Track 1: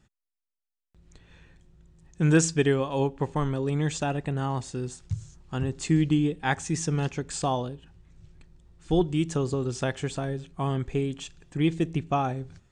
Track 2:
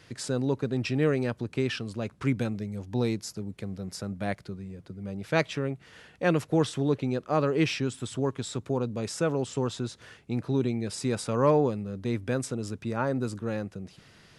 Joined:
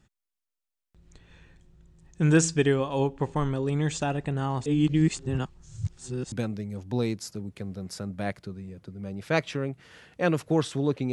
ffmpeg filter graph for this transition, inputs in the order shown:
-filter_complex "[0:a]apad=whole_dur=11.12,atrim=end=11.12,asplit=2[a][b];[a]atrim=end=4.662[c];[b]atrim=start=4.658:end=6.322,asetpts=PTS-STARTPTS,areverse[d];[1:a]atrim=start=2.338:end=7.14[e];[c][d]acrossfade=d=0.004:c1=hsin:c2=hsin[f];[f][e]acrossfade=d=0.004:c1=hsin:c2=hsin"

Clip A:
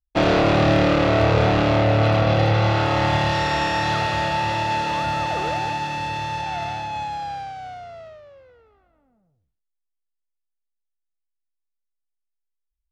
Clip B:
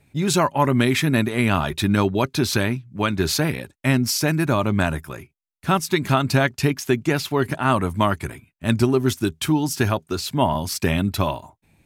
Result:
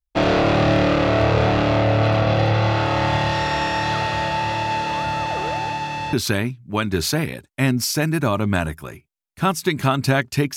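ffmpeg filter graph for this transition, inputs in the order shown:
-filter_complex "[0:a]apad=whole_dur=10.56,atrim=end=10.56,atrim=end=6.132[a];[1:a]atrim=start=2.388:end=6.82[b];[a][b]acrossfade=d=0.004:c1=hsin:c2=hsin"

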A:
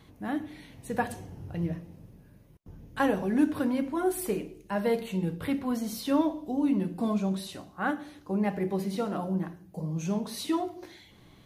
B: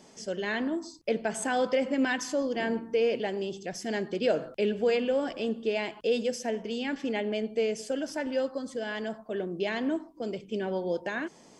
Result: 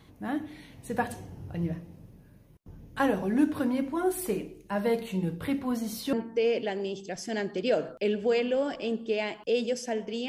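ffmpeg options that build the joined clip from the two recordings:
-filter_complex "[0:a]apad=whole_dur=10.28,atrim=end=10.28,atrim=end=6.132[a];[1:a]atrim=start=2.698:end=6.85[b];[a][b]acrossfade=d=0.004:c1=hsin:c2=hsin"

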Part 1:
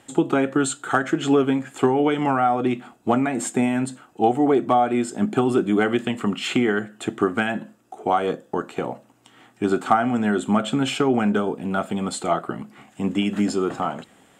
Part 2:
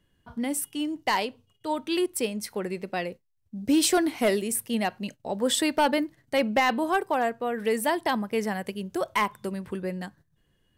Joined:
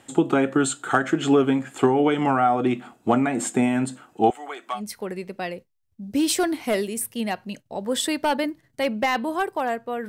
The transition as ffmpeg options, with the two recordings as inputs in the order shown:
-filter_complex "[0:a]asettb=1/sr,asplit=3[a][b][c];[a]atrim=end=4.304[d];[b]atrim=start=4.3:end=4.81,asetpts=PTS-STARTPTS,afade=t=in:d=0.004:c=qsin,afade=t=out:st=0.506:d=0.004:c=qsin,highpass=1.4k[e];[c]atrim=start=4.806[f];[d][e]acrossfade=d=0.004:c1=hsin:c2=qsin[g];[g][f]acrossfade=d=0.004:c1=qsin:c2=hsin,apad=whole_dur=10.08,atrim=end=10.08,atrim=end=4.81,asetpts=PTS-STARTPTS[h];[1:a]atrim=start=2.27:end=7.62,asetpts=PTS-STARTPTS[i];[h][i]acrossfade=d=0.08:c1=tri:c2=tri"

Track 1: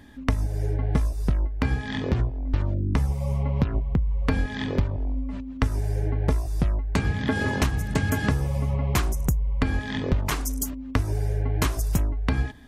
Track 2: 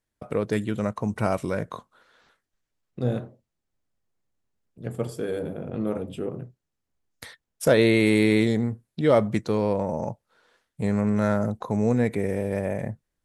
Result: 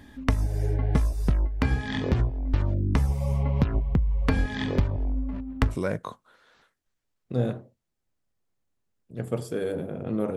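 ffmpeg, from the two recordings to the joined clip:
-filter_complex "[0:a]asettb=1/sr,asplit=3[a][b][c];[a]atrim=end=5.094[d];[b]atrim=start=5.09:end=5.76,asetpts=PTS-STARTPTS,afade=t=in:d=0.004:c=qsin,afade=t=out:st=0.666:d=0.004:c=qsin,adynamicsmooth=sensitivity=6.5:basefreq=900[e];[c]atrim=start=5.756[f];[d][e]acrossfade=d=0.004:c1=hsin:c2=qsin[g];[g][f]acrossfade=d=0.004:c1=qsin:c2=hsin,apad=whole_dur=10.36,atrim=end=10.36,atrim=end=5.76,asetpts=PTS-STARTPTS[h];[1:a]atrim=start=1.35:end=6.03,asetpts=PTS-STARTPTS[i];[h][i]acrossfade=d=0.08:c1=tri:c2=tri"

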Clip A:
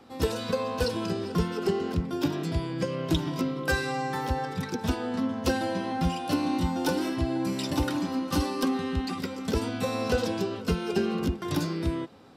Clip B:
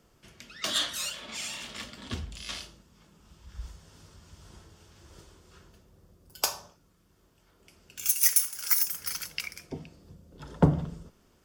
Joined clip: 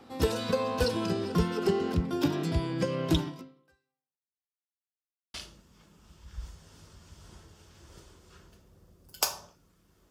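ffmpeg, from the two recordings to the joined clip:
-filter_complex "[0:a]apad=whole_dur=10.1,atrim=end=10.1,asplit=2[a][b];[a]atrim=end=4.42,asetpts=PTS-STARTPTS,afade=t=out:st=3.2:d=1.22:c=exp[c];[b]atrim=start=4.42:end=5.34,asetpts=PTS-STARTPTS,volume=0[d];[1:a]atrim=start=2.55:end=7.31,asetpts=PTS-STARTPTS,afade=t=in:d=0.004:c=hsin[e];[c][d][e]concat=n=3:v=0:a=1"

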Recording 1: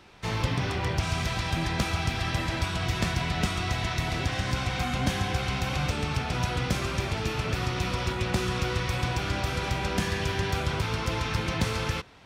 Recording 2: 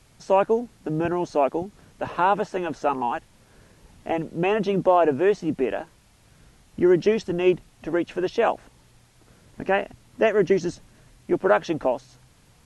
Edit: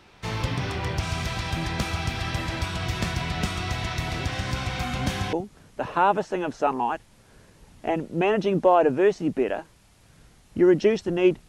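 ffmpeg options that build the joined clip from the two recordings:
-filter_complex "[0:a]apad=whole_dur=11.48,atrim=end=11.48,atrim=end=5.332[a];[1:a]atrim=start=1.548:end=7.7[b];[a][b]acrossfade=d=0.004:c1=hsin:c2=hsin"

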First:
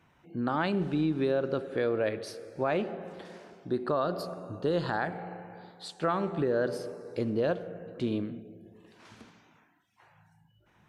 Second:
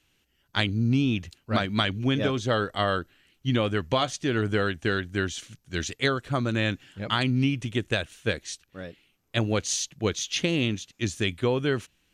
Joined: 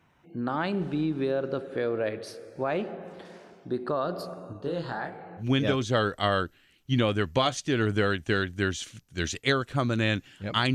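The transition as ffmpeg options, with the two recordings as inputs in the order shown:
-filter_complex "[0:a]asettb=1/sr,asplit=3[a][b][c];[a]atrim=end=4.534[d];[b]atrim=start=4.53:end=5.46,asetpts=PTS-STARTPTS,afade=t=in:d=0.004:c=qsin,afade=t=out:st=0.926:d=0.004:c=qsin,flanger=delay=19.5:depth=5.6:speed=1.5[e];[c]atrim=start=5.456[f];[d][e]acrossfade=d=0.004:c1=hsin:c2=qsin[g];[g][f]acrossfade=d=0.004:c1=qsin:c2=hsin,apad=whole_dur=10.74,atrim=end=10.74,atrim=end=5.46,asetpts=PTS-STARTPTS[h];[1:a]atrim=start=1.92:end=7.3,asetpts=PTS-STARTPTS[i];[h][i]acrossfade=d=0.1:c1=tri:c2=tri"

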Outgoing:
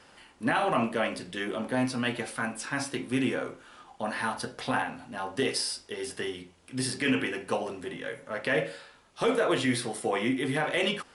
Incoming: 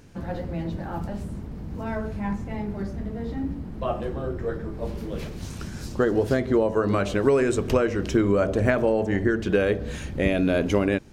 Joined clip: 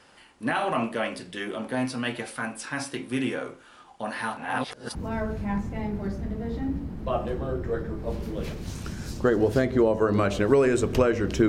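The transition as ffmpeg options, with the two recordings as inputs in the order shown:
-filter_complex "[0:a]apad=whole_dur=11.48,atrim=end=11.48,asplit=2[a][b];[a]atrim=end=4.372[c];[b]atrim=start=4.368:end=4.952,asetpts=PTS-STARTPTS,areverse[d];[1:a]atrim=start=1.698:end=8.23[e];[c][d]acrossfade=d=0.004:c1=hsin:c2=hsin[f];[f][e]acrossfade=d=0.004:c1=hsin:c2=hsin"

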